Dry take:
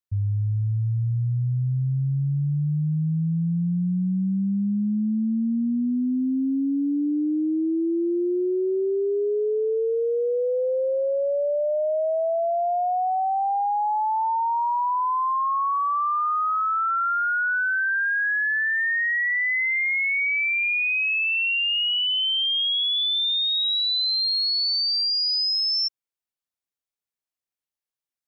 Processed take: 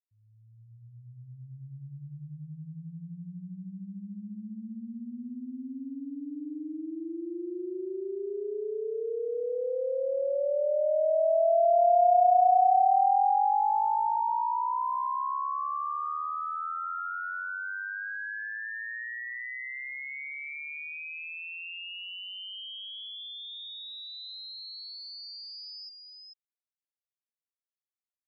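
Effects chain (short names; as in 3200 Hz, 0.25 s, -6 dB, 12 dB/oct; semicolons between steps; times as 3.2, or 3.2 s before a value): opening faded in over 1.87 s; Doppler pass-by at 12.18, 19 m/s, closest 16 m; echo 0.442 s -4.5 dB; gain +2 dB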